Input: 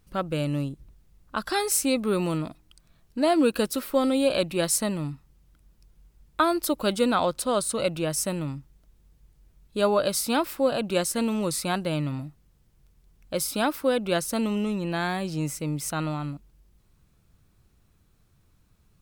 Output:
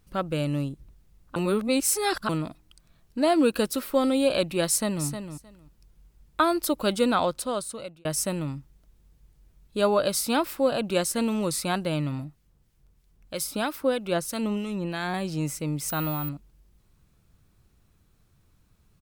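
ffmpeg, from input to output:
-filter_complex "[0:a]asplit=2[a][b];[b]afade=t=in:st=4.66:d=0.01,afade=t=out:st=5.06:d=0.01,aecho=0:1:310|620:0.375837|0.0563756[c];[a][c]amix=inputs=2:normalize=0,asettb=1/sr,asplit=3[d][e][f];[d]atrim=end=12.244[g];[e]atrim=start=12.24:end=15.14,asetpts=PTS-STARTPTS,afade=t=in:d=0.004:c=qsin,afade=t=out:st=2.896:d=0.004:c=qsin,acrossover=split=1400[h][i];[h]aeval=exprs='val(0)*(1-0.5/2+0.5/2*cos(2*PI*3.1*n/s))':c=same[j];[i]aeval=exprs='val(0)*(1-0.5/2-0.5/2*cos(2*PI*3.1*n/s))':c=same[k];[j][k]amix=inputs=2:normalize=0[l];[f]atrim=start=15.136[m];[g][l]acrossfade=d=0.004:c1=hsin:c2=qsin[n];[n][m]acrossfade=d=0.004:c1=qsin:c2=hsin,asettb=1/sr,asplit=3[o][p][q];[o]atrim=end=15.884[r];[p]atrim=start=15.88:end=16.29,asetpts=PTS-STARTPTS,afade=t=in:d=0.004:c=qsin,afade=t=out:st=0.406:d=0.004:c=qsin,aeval=exprs='val(0)+0.0251*sin(2*PI*15000*n/s)':c=same[s];[q]atrim=start=16.286[t];[r][s]acrossfade=d=0.004:c1=hsin:c2=qsin[u];[u][t]acrossfade=d=0.004:c1=qsin:c2=hsin,asplit=4[v][w][x][y];[v]atrim=end=1.362[z];[w]atrim=start=1.358:end=2.292,asetpts=PTS-STARTPTS,areverse[aa];[x]atrim=start=2.288:end=8.05,asetpts=PTS-STARTPTS,afade=t=out:st=4.912:d=0.85[ab];[y]atrim=start=8.05,asetpts=PTS-STARTPTS,afade=t=in:d=0.004:c=hsin[ac];[z][aa]acrossfade=d=0.004:c1=hsin:c2=hsin[ad];[ab][ac]concat=n=2:v=0:a=1[ae];[ad][ae]acrossfade=d=0.004:c1=hsin:c2=hsin"

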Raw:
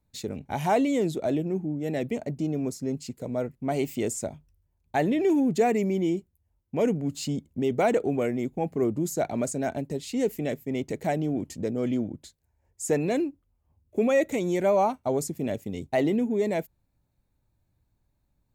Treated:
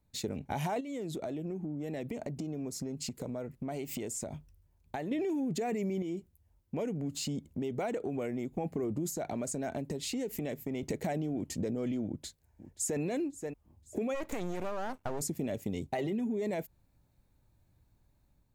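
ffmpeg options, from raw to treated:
-filter_complex "[0:a]asplit=3[a][b][c];[a]afade=t=out:st=0.79:d=0.02[d];[b]acompressor=threshold=-37dB:ratio=16:attack=3.2:release=140:knee=1:detection=peak,afade=t=in:st=0.79:d=0.02,afade=t=out:st=5.11:d=0.02[e];[c]afade=t=in:st=5.11:d=0.02[f];[d][e][f]amix=inputs=3:normalize=0,asettb=1/sr,asplit=3[g][h][i];[g]atrim=end=6.024[j];[h]atrim=start=6.02:end=8.58,asetpts=PTS-STARTPTS,afade=t=in:d=0.004:c=qsin,afade=t=out:st=2.556:d=0.004:c=qsin,acompressor=threshold=-41dB:ratio=2:attack=3.2:release=140:knee=1:detection=peak[k];[i]atrim=start=8.576[l];[j][k]acrossfade=d=0.004:c1=hsin:c2=qsin[m];[m][l]acrossfade=d=0.004:c1=qsin:c2=hsin,asettb=1/sr,asplit=3[n][o][p];[n]atrim=end=9.104[q];[o]atrim=start=9.1:end=10.83,asetpts=PTS-STARTPTS,afade=t=in:d=0.004:c=qsin,afade=t=out:st=1.726:d=0.004:c=qsin,acompressor=threshold=-36dB:ratio=4:attack=3.2:release=140:knee=1:detection=peak[r];[p]atrim=start=10.826[s];[q][r]acrossfade=d=0.004:c1=hsin:c2=qsin[t];[t][s]acrossfade=d=0.004:c1=qsin:c2=hsin,asplit=2[u][v];[v]afade=t=in:st=12.06:d=0.01,afade=t=out:st=13:d=0.01,aecho=0:1:530|1060|1590:0.125893|0.050357|0.0201428[w];[u][w]amix=inputs=2:normalize=0,asplit=3[x][y][z];[x]afade=t=out:st=14.14:d=0.02[aa];[y]aeval=exprs='max(val(0),0)':c=same,afade=t=in:st=14.14:d=0.02,afade=t=out:st=15.2:d=0.02[ab];[z]afade=t=in:st=15.2:d=0.02[ac];[aa][ab][ac]amix=inputs=3:normalize=0,asettb=1/sr,asplit=3[ad][ae][af];[ad]atrim=end=15.924[ag];[ae]atrim=start=15.92:end=16.37,asetpts=PTS-STARTPTS,afade=t=in:d=0.004:c=qsin,afade=t=out:st=0.446:d=0.004:c=qsin,aecho=1:1:5.2:0.62,atrim=end_sample=19845[ah];[af]atrim=start=16.366[ai];[ag][ah]acrossfade=d=0.004:c1=hsin:c2=qsin[aj];[aj][ai]acrossfade=d=0.004:c1=qsin:c2=hsin,dynaudnorm=f=470:g=3:m=4dB,alimiter=limit=-19.5dB:level=0:latency=1:release=10,acompressor=threshold=-31dB:ratio=6"

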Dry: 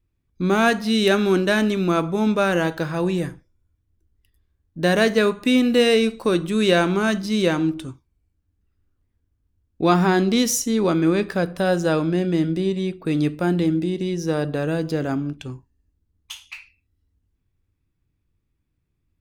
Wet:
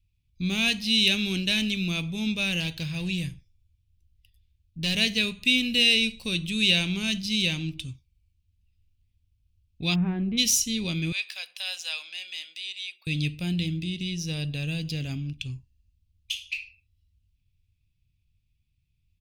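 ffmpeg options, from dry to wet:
-filter_complex "[0:a]asettb=1/sr,asplit=3[a][b][c];[a]atrim=end=2.604[d];[b]atrim=start=2.6:end=4.97,asetpts=PTS-STARTPTS,afade=t=in:d=0.004:c=qsin,afade=t=out:st=2.366:d=0.004:c=qsin,asoftclip=type=hard:threshold=-17dB[e];[c]atrim=start=4.966[f];[d][e]acrossfade=d=0.004:c1=hsin:c2=qsin[g];[g][f]acrossfade=d=0.004:c1=qsin:c2=hsin,asplit=3[h][i][j];[h]afade=t=out:st=9.94:d=0.02[k];[i]lowpass=f=1.5k:w=0.5412,lowpass=f=1.5k:w=1.3066,afade=t=in:st=9.94:d=0.02,afade=t=out:st=10.37:d=0.02[l];[j]afade=t=in:st=10.37:d=0.02[m];[k][l][m]amix=inputs=3:normalize=0,asettb=1/sr,asplit=3[n][o][p];[n]atrim=end=11.124[q];[o]atrim=start=11.12:end=13.07,asetpts=PTS-STARTPTS,afade=t=in:d=0.004:c=qsin,afade=t=out:st=1.946:d=0.004:c=qsin,highpass=f=800:w=0.5412,highpass=f=800:w=1.3066[r];[p]atrim=start=13.066[s];[q][r]acrossfade=d=0.004:c1=hsin:c2=qsin[t];[t][s]acrossfade=d=0.004:c1=qsin:c2=hsin,firequalizer=gain_entry='entry(110,0);entry(330,-20);entry(1400,-24);entry(2500,5);entry(4900,2);entry(7100,-3)':delay=0.05:min_phase=1,volume=1.5dB"

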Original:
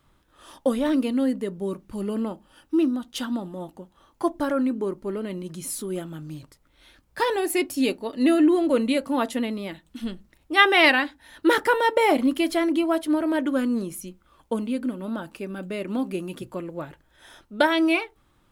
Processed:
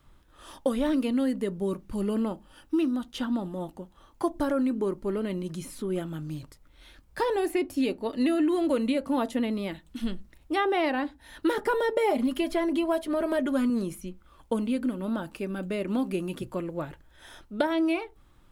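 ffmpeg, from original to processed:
-filter_complex "[0:a]asettb=1/sr,asplit=3[a][b][c];[a]atrim=end=11.554[d];[b]atrim=start=11.55:end=13.7,asetpts=PTS-STARTPTS,afade=t=in:d=0.004:c=qsin,afade=t=out:st=2.146:d=0.004:c=qsin,aecho=1:1:4.9:0.65,atrim=end_sample=94815[e];[c]atrim=start=13.696[f];[d][e]acrossfade=d=0.004:c1=hsin:c2=qsin[g];[g][f]acrossfade=d=0.004:c1=qsin:c2=hsin,lowshelf=f=64:g=10.5,acrossover=split=1000|3400[h][i][j];[h]acompressor=threshold=-23dB:ratio=4[k];[i]acompressor=threshold=-39dB:ratio=4[l];[j]acompressor=threshold=-47dB:ratio=4[m];[k][l][m]amix=inputs=3:normalize=0"

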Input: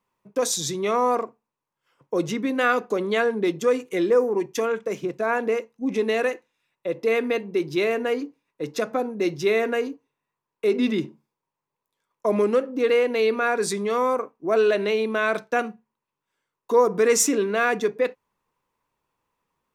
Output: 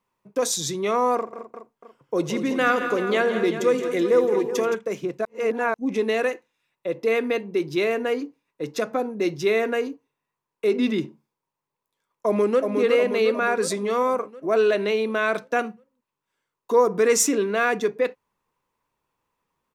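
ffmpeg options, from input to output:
-filter_complex "[0:a]asettb=1/sr,asplit=3[a][b][c];[a]atrim=end=1.164[d];[b]atrim=start=1.16:end=4.75,asetpts=PTS-STARTPTS,afade=t=in:d=0.004:c=qsin,afade=t=out:st=3.586:d=0.004:c=qsin,aecho=1:1:82|169|218|378|663:0.15|0.299|0.237|0.251|0.106,atrim=end_sample=158319[e];[c]atrim=start=4.746[f];[d][e]acrossfade=d=0.004:c1=hsin:c2=qsin[g];[g][f]acrossfade=d=0.004:c1=qsin:c2=hsin,asplit=2[h][i];[i]afade=t=in:st=12.26:d=0.01,afade=t=out:st=12.76:d=0.01,aecho=0:1:360|720|1080|1440|1800|2160|2520|2880|3240:0.595662|0.357397|0.214438|0.128663|0.0771978|0.0463187|0.0277912|0.0166747|0.0100048[j];[h][j]amix=inputs=2:normalize=0,asplit=3[k][l][m];[k]atrim=end=5.252[n];[l]atrim=start=5.248:end=5.742,asetpts=PTS-STARTPTS,areverse[o];[m]atrim=start=5.738[p];[n][o]acrossfade=d=0.004:c1=hsin:c2=hsin[q];[q][p]acrossfade=d=0.004:c1=hsin:c2=hsin"

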